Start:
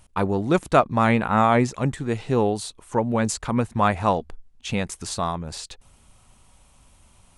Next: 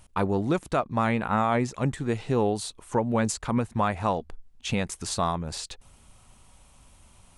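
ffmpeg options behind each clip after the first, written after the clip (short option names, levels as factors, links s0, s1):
-af "alimiter=limit=0.211:level=0:latency=1:release=441"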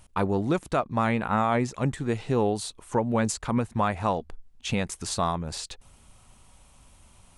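-af anull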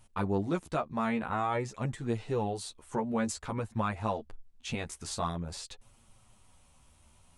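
-af "flanger=delay=8.7:depth=4.8:regen=5:speed=0.5:shape=sinusoidal,volume=0.668"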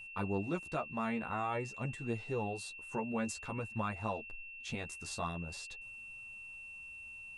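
-af "aeval=exprs='val(0)+0.00891*sin(2*PI*2700*n/s)':c=same,volume=0.531"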